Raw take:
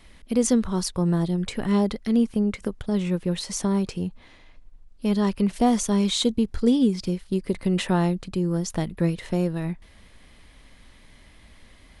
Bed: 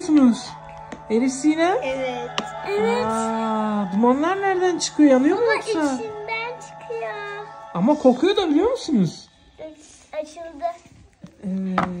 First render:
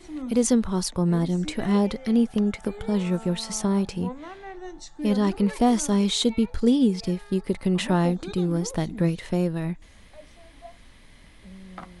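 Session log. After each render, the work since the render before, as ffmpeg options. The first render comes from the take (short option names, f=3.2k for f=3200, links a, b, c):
-filter_complex "[1:a]volume=-19.5dB[a];[0:a][a]amix=inputs=2:normalize=0"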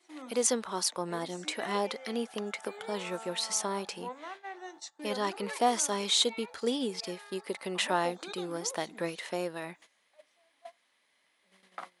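-af "agate=range=-15dB:threshold=-41dB:ratio=16:detection=peak,highpass=590"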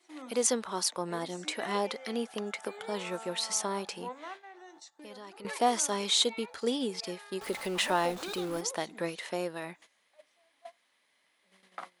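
-filter_complex "[0:a]asettb=1/sr,asplit=3[a][b][c];[a]atrim=end=4.374[d];[b]atrim=start=4.37:end=5.45,asetpts=PTS-STARTPTS,afade=t=in:d=0.004:c=qsin,afade=t=out:st=1.076:d=0.004:c=qsin,acompressor=threshold=-50dB:ratio=2.5:attack=3.2:release=140:knee=1:detection=peak[e];[c]atrim=start=5.446[f];[d][e]acrossfade=d=0.004:c1=hsin:c2=qsin[g];[g][f]acrossfade=d=0.004:c1=qsin:c2=hsin,asettb=1/sr,asplit=3[h][i][j];[h]atrim=end=7.414[k];[i]atrim=start=7.41:end=8.61,asetpts=PTS-STARTPTS,afade=t=in:d=0.004:c=qsin,afade=t=out:st=1.196:d=0.004:c=qsin,aeval=exprs='val(0)+0.5*0.0112*sgn(val(0))':c=same[l];[j]atrim=start=8.606[m];[k][l]acrossfade=d=0.004:c1=hsin:c2=qsin[n];[n][m]acrossfade=d=0.004:c1=qsin:c2=hsin"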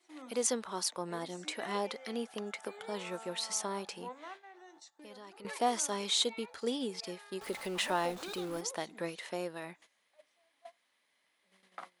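-af "volume=-4dB"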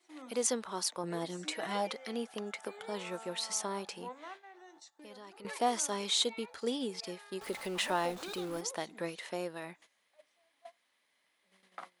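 -filter_complex "[0:a]asettb=1/sr,asplit=3[a][b][c];[a]atrim=end=1.034[d];[b]atrim=start=1.03:end=1.93,asetpts=PTS-STARTPTS,afade=t=in:d=0.004:c=qsin,afade=t=out:st=0.896:d=0.004:c=qsin,aecho=1:1:6.3:0.65,atrim=end_sample=39690[e];[c]atrim=start=1.926[f];[d][e]acrossfade=d=0.004:c1=hsin:c2=qsin[g];[g][f]acrossfade=d=0.004:c1=qsin:c2=hsin"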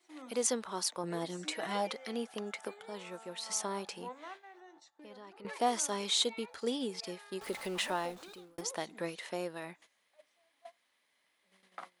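-filter_complex "[0:a]asettb=1/sr,asplit=3[a][b][c];[a]atrim=end=4.604[d];[b]atrim=start=4.6:end=5.59,asetpts=PTS-STARTPTS,afade=t=in:d=0.004:c=qsin,afade=t=out:st=0.986:d=0.004:c=qsin,highshelf=f=4.8k:g=-11.5[e];[c]atrim=start=5.586[f];[d][e]acrossfade=d=0.004:c1=hsin:c2=qsin[g];[g][f]acrossfade=d=0.004:c1=qsin:c2=hsin,asplit=4[h][i][j][k];[h]atrim=end=2.742[l];[i]atrim=start=2.738:end=3.462,asetpts=PTS-STARTPTS,volume=-5dB[m];[j]atrim=start=3.458:end=8.58,asetpts=PTS-STARTPTS,afade=t=out:st=4.262:d=0.86[n];[k]atrim=start=8.58,asetpts=PTS-STARTPTS,afade=t=in:d=0.004:c=hsin[o];[l][m]acrossfade=d=0.004:c1=hsin:c2=hsin[p];[n][o]concat=n=2:v=0:a=1[q];[p][q]acrossfade=d=0.004:c1=hsin:c2=hsin"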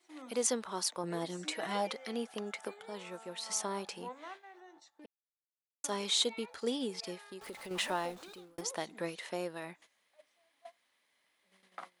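-filter_complex "[0:a]asettb=1/sr,asplit=3[a][b][c];[a]atrim=end=7.234[d];[b]atrim=start=7.23:end=7.71,asetpts=PTS-STARTPTS,afade=t=in:d=0.004:c=qsin,afade=t=out:st=0.476:d=0.004:c=qsin,acompressor=threshold=-48dB:ratio=2:attack=3.2:release=140:knee=1:detection=peak[e];[c]atrim=start=7.706[f];[d][e]acrossfade=d=0.004:c1=hsin:c2=qsin[g];[g][f]acrossfade=d=0.004:c1=qsin:c2=hsin,asplit=3[h][i][j];[h]atrim=end=5.06,asetpts=PTS-STARTPTS,afade=t=out:st=5.056:d=0.004:c=hsin[k];[i]atrim=start=5.06:end=5.84,asetpts=PTS-STARTPTS,volume=0[l];[j]atrim=start=5.84,asetpts=PTS-STARTPTS,afade=t=in:d=0.004:c=hsin[m];[k][l][m]concat=n=3:v=0:a=1"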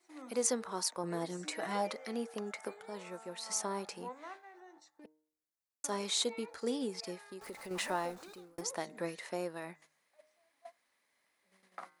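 -af "equalizer=f=3.2k:w=2.6:g=-8,bandreject=f=154.2:t=h:w=4,bandreject=f=308.4:t=h:w=4,bandreject=f=462.6:t=h:w=4,bandreject=f=616.8:t=h:w=4,bandreject=f=771:t=h:w=4,bandreject=f=925.2:t=h:w=4,bandreject=f=1.0794k:t=h:w=4,bandreject=f=1.2336k:t=h:w=4,bandreject=f=1.3878k:t=h:w=4,bandreject=f=1.542k:t=h:w=4,bandreject=f=1.6962k:t=h:w=4,bandreject=f=1.8504k:t=h:w=4,bandreject=f=2.0046k:t=h:w=4,bandreject=f=2.1588k:t=h:w=4"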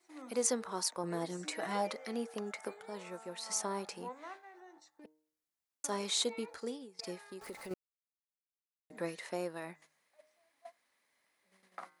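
-filter_complex "[0:a]asplit=4[a][b][c][d];[a]atrim=end=6.99,asetpts=PTS-STARTPTS,afade=t=out:st=6.56:d=0.43:c=qua:silence=0.105925[e];[b]atrim=start=6.99:end=7.74,asetpts=PTS-STARTPTS,afade=t=in:d=0.004:c=hsin:silence=0.105925,afade=t=out:st=0.746:d=0.004:c=hsin[f];[c]atrim=start=7.74:end=8.9,asetpts=PTS-STARTPTS,volume=0[g];[d]atrim=start=8.9,asetpts=PTS-STARTPTS,afade=t=in:d=0.004:c=hsin[h];[e][f][g][h]concat=n=4:v=0:a=1"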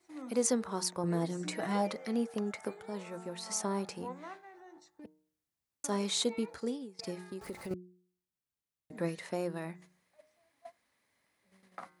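-af "equalizer=f=93:t=o:w=2.7:g=14.5,bandreject=f=180.5:t=h:w=4,bandreject=f=361:t=h:w=4"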